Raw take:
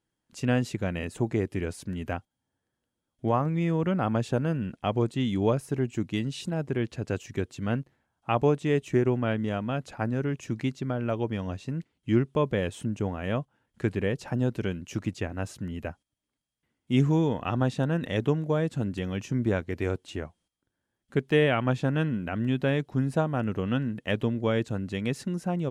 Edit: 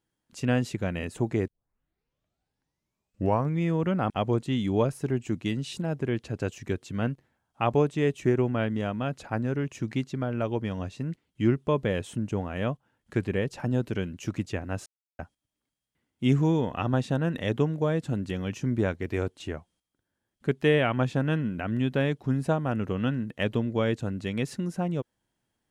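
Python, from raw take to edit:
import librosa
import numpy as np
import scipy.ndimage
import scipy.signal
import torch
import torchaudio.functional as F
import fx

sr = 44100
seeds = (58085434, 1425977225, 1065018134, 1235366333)

y = fx.edit(x, sr, fx.tape_start(start_s=1.48, length_s=2.1),
    fx.cut(start_s=4.1, length_s=0.68),
    fx.silence(start_s=15.54, length_s=0.33), tone=tone)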